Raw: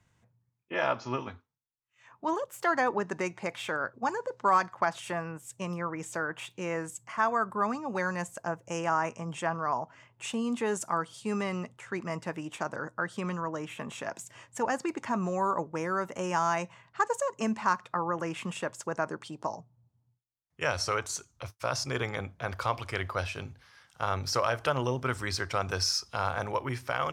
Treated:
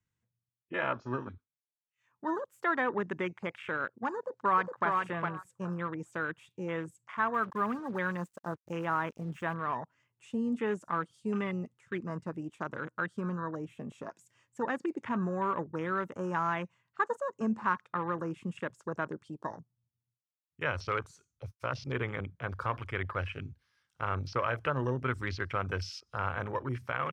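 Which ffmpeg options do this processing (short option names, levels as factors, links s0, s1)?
-filter_complex "[0:a]asplit=2[s0][s1];[s1]afade=t=in:st=4.16:d=0.01,afade=t=out:st=4.87:d=0.01,aecho=0:1:410|820|1230:0.668344|0.133669|0.0267338[s2];[s0][s2]amix=inputs=2:normalize=0,asettb=1/sr,asplit=3[s3][s4][s5];[s3]atrim=end=7.344[s6];[s4]atrim=start=7.34:end=9.54,asetpts=PTS-STARTPTS,afade=t=in:d=0.004:c=qsin,afade=t=out:st=2.196:d=0.004:c=qsin,acrusher=bits=6:mix=0:aa=0.5[s7];[s5]atrim=start=9.536[s8];[s6][s7]acrossfade=d=0.004:c1=hsin:c2=qsin[s9];[s9][s8]acrossfade=d=0.004:c1=qsin:c2=hsin,afwtdn=0.0141,acrossover=split=3400[s10][s11];[s11]acompressor=threshold=0.00158:ratio=4:attack=1:release=60[s12];[s10][s12]amix=inputs=2:normalize=0,equalizer=f=720:w=1.7:g=-8"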